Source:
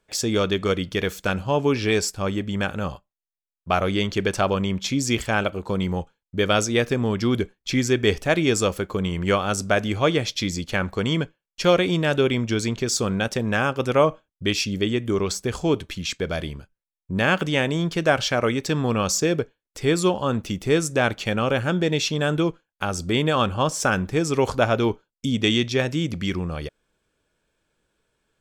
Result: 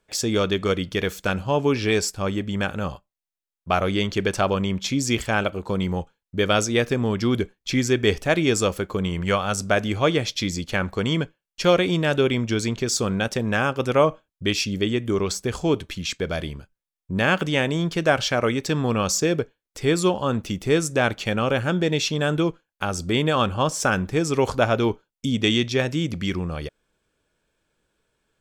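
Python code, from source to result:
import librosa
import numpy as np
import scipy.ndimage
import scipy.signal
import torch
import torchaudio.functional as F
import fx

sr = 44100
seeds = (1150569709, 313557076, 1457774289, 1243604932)

y = fx.peak_eq(x, sr, hz=330.0, db=-9.0, octaves=0.52, at=(9.21, 9.63))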